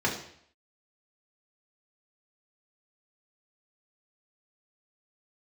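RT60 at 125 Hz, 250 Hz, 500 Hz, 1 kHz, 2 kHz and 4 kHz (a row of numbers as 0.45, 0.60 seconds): 0.70, 0.60, 0.65, 0.65, 0.65, 0.65 seconds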